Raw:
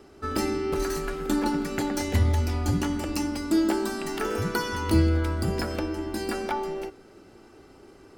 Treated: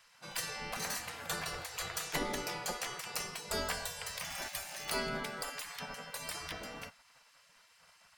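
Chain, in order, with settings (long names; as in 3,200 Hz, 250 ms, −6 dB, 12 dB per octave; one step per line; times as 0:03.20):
0:04.28–0:04.93: surface crackle 300 per second −34 dBFS
gate on every frequency bin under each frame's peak −20 dB weak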